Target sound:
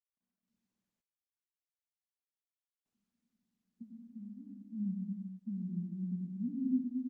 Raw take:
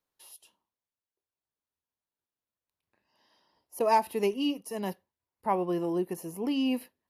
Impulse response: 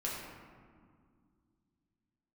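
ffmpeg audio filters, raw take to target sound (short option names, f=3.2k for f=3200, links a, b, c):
-filter_complex "[0:a]asplit=3[a][b][c];[a]afade=t=out:st=3.77:d=0.02[d];[b]acompressor=threshold=-37dB:ratio=10,afade=t=in:st=3.77:d=0.02,afade=t=out:st=4.61:d=0.02[e];[c]afade=t=in:st=4.61:d=0.02[f];[d][e][f]amix=inputs=3:normalize=0,asuperpass=centerf=210:order=8:qfactor=2.8,aecho=1:1:175|350:0.075|0.027,asplit=2[g][h];[1:a]atrim=start_sample=2205,afade=t=out:st=0.42:d=0.01,atrim=end_sample=18963,adelay=93[i];[h][i]afir=irnorm=-1:irlink=0,volume=-5dB[j];[g][j]amix=inputs=2:normalize=0,volume=1dB" -ar 48000 -c:a libopus -b:a 48k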